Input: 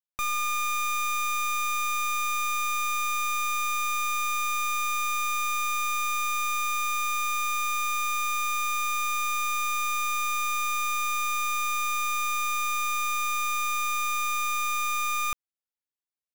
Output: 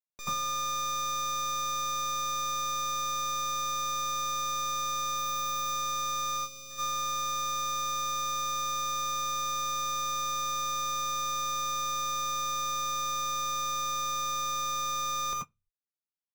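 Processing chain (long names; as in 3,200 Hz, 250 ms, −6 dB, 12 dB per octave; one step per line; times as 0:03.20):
0:05.18–0:05.68: high-shelf EQ 10,000 Hz +11 dB
0:06.37–0:06.70: gain on a spectral selection 560–2,200 Hz −19 dB
soft clipping −26 dBFS, distortion −24 dB
convolution reverb RT60 0.20 s, pre-delay 80 ms, DRR −3.5 dB
expander for the loud parts 2.5 to 1, over −35 dBFS
level −7 dB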